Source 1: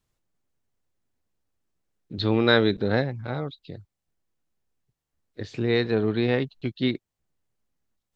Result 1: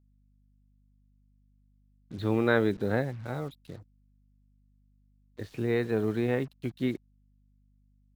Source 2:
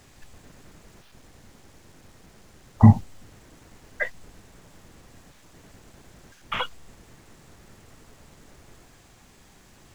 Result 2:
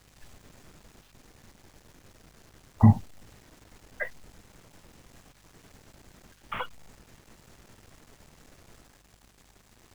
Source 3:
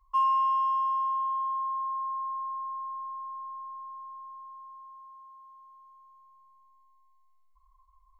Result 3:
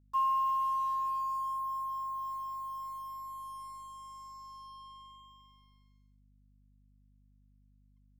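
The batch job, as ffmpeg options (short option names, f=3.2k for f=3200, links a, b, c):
-filter_complex "[0:a]acrossover=split=2600[a][b];[b]acompressor=threshold=-51dB:ratio=4:attack=1:release=60[c];[a][c]amix=inputs=2:normalize=0,acrusher=bits=7:mix=0:aa=0.5,aeval=exprs='val(0)+0.00112*(sin(2*PI*50*n/s)+sin(2*PI*2*50*n/s)/2+sin(2*PI*3*50*n/s)/3+sin(2*PI*4*50*n/s)/4+sin(2*PI*5*50*n/s)/5)':c=same,volume=-4.5dB"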